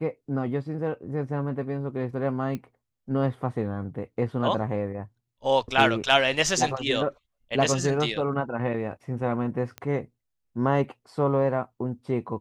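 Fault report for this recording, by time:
0:02.55: click −20 dBFS
0:09.78: click −20 dBFS

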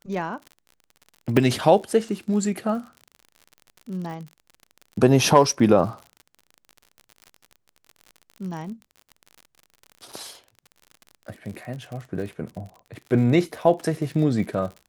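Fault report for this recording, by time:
surface crackle 47 per second −33 dBFS
0:01.37: drop-out 2.3 ms

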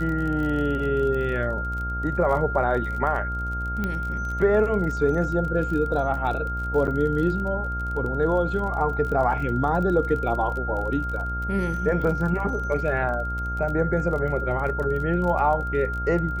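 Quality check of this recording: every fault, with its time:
mains buzz 60 Hz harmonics 16 −30 dBFS
surface crackle 31 per second −31 dBFS
whistle 1,400 Hz −29 dBFS
0:03.84: click −15 dBFS
0:06.87–0:06.88: drop-out 8.7 ms

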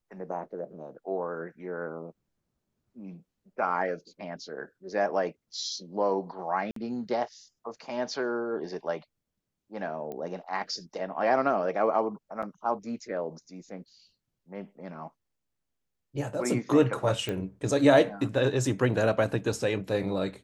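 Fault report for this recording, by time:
0:06.71–0:06.76: drop-out 53 ms
0:10.12: click −26 dBFS
0:12.42–0:12.43: drop-out 7.4 ms
0:17.29: click −19 dBFS

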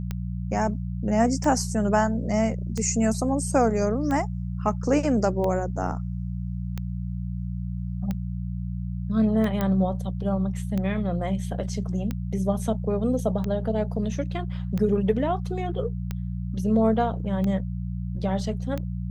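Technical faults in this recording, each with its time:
mains hum 60 Hz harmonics 3 −30 dBFS
scratch tick 45 rpm −17 dBFS
0:09.61: click −13 dBFS

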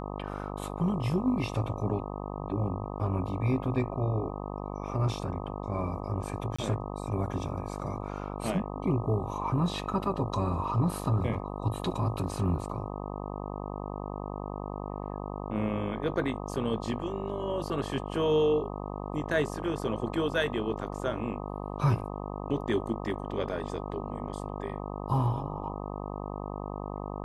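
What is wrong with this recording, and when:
mains buzz 50 Hz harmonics 25 −37 dBFS
0:06.56–0:06.58: drop-out 25 ms

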